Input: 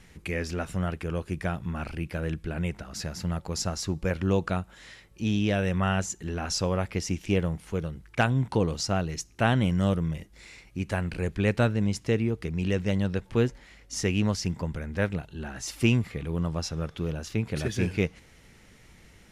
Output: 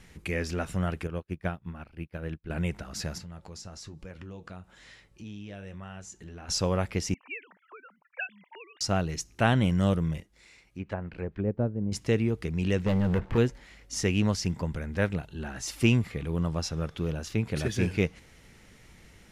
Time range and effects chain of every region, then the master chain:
0:01.07–0:02.50: parametric band 7,500 Hz −9.5 dB 1 octave + expander for the loud parts 2.5 to 1, over −49 dBFS
0:03.18–0:06.49: low-pass filter 10,000 Hz + downward compressor 4 to 1, threshold −37 dBFS + flanger 1.1 Hz, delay 6.4 ms, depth 4.5 ms, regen −68%
0:07.14–0:08.81: three sine waves on the formant tracks + envelope filter 770–2,400 Hz, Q 4.2, up, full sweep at −23 dBFS + one half of a high-frequency compander encoder only
0:10.20–0:11.92: treble cut that deepens with the level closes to 500 Hz, closed at −22 dBFS + low-shelf EQ 190 Hz −5 dB + expander for the loud parts, over −38 dBFS
0:12.86–0:13.38: low-pass filter 2,100 Hz + downward compressor 2 to 1, threshold −29 dBFS + leveller curve on the samples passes 3
whole clip: no processing

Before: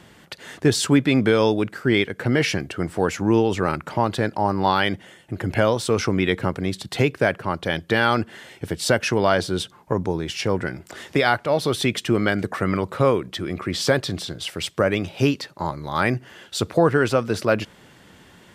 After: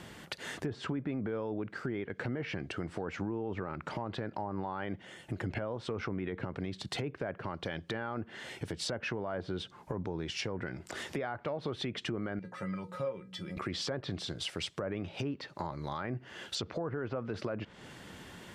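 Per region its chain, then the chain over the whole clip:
0:12.39–0:13.57: mains-hum notches 60/120/180/240/300/360/420/480 Hz + tuned comb filter 180 Hz, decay 0.15 s, harmonics odd, mix 90%
0:16.55–0:17.24: low-pass filter 6,400 Hz 24 dB per octave + notch filter 3,800 Hz, Q 19
whole clip: treble cut that deepens with the level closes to 1,400 Hz, closed at −15.5 dBFS; brickwall limiter −15.5 dBFS; downward compressor 2.5 to 1, threshold −38 dBFS

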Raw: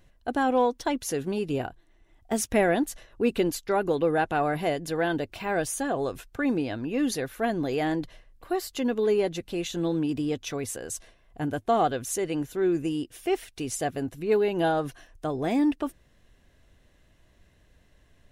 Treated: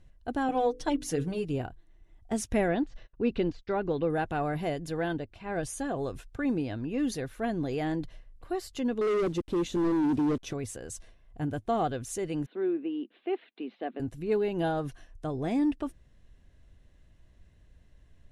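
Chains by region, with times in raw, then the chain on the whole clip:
0:00.48–0:01.45: mains-hum notches 50/100/150/200/250/300/350/400/450/500 Hz + comb filter 6.6 ms, depth 86%
0:02.68–0:04.10: de-essing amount 90% + low-pass filter 5,100 Hz 24 dB per octave + noise gate −52 dBFS, range −30 dB
0:05.13–0:05.63: high-shelf EQ 7,300 Hz −11 dB + expander for the loud parts, over −36 dBFS
0:09.01–0:10.53: hold until the input has moved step −46 dBFS + parametric band 330 Hz +10.5 dB 1.6 octaves + hard clipping −20.5 dBFS
0:12.46–0:14.00: Chebyshev band-pass filter 210–4,000 Hz, order 5 + high-frequency loss of the air 190 metres
whole clip: low-pass filter 11,000 Hz 24 dB per octave; low-shelf EQ 190 Hz +11 dB; level −6.5 dB

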